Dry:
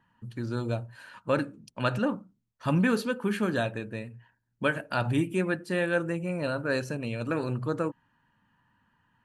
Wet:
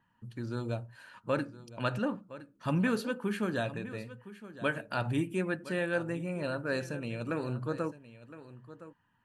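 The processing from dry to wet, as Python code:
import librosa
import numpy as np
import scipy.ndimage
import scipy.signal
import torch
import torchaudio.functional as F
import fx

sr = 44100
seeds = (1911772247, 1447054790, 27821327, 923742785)

y = x + 10.0 ** (-15.5 / 20.0) * np.pad(x, (int(1014 * sr / 1000.0), 0))[:len(x)]
y = F.gain(torch.from_numpy(y), -4.5).numpy()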